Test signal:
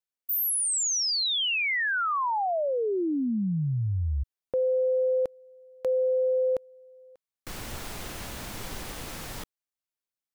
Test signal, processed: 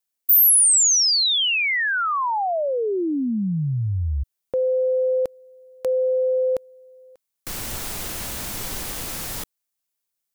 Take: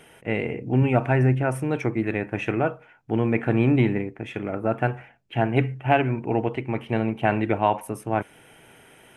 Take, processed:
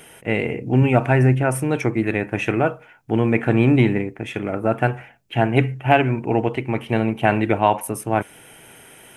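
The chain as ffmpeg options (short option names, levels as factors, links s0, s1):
-af "highshelf=f=5500:g=10,volume=1.58"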